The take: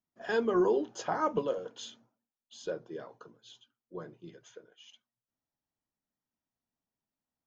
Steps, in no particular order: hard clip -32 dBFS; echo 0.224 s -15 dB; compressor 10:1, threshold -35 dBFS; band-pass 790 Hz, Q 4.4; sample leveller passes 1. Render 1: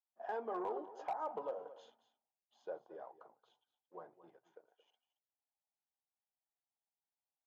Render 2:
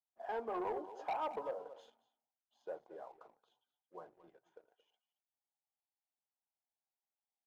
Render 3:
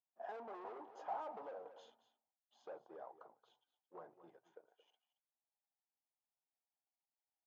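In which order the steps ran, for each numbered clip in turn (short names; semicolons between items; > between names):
sample leveller > band-pass > compressor > echo > hard clip; band-pass > hard clip > compressor > echo > sample leveller; sample leveller > hard clip > echo > compressor > band-pass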